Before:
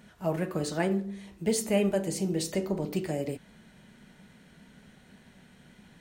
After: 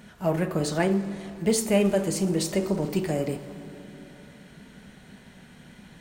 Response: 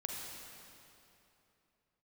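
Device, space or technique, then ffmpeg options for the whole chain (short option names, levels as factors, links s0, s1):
saturated reverb return: -filter_complex "[0:a]asplit=2[s0][s1];[1:a]atrim=start_sample=2205[s2];[s1][s2]afir=irnorm=-1:irlink=0,asoftclip=type=tanh:threshold=0.0237,volume=0.531[s3];[s0][s3]amix=inputs=2:normalize=0,volume=1.41"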